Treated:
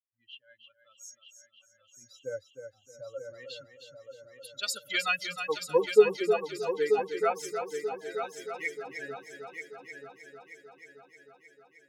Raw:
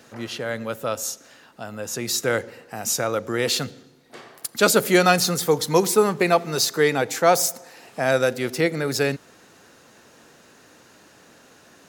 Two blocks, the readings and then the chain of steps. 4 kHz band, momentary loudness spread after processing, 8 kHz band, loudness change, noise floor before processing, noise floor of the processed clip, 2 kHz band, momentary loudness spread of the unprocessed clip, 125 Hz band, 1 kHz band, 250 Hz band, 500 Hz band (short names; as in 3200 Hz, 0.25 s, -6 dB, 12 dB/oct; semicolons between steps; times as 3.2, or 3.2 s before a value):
-12.0 dB, 23 LU, -18.5 dB, -9.0 dB, -53 dBFS, -68 dBFS, -10.0 dB, 16 LU, -24.0 dB, -12.0 dB, -17.0 dB, -7.0 dB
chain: per-bin expansion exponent 3; LFO band-pass sine 0.28 Hz 370–4800 Hz; multi-head echo 0.311 s, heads first and third, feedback 59%, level -8 dB; gain +3 dB